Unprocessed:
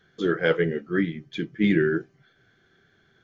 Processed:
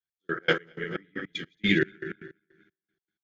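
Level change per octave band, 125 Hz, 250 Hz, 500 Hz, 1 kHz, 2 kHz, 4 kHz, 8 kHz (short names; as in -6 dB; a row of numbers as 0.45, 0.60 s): -7.0 dB, -7.0 dB, -7.5 dB, -1.0 dB, 0.0 dB, +4.5 dB, n/a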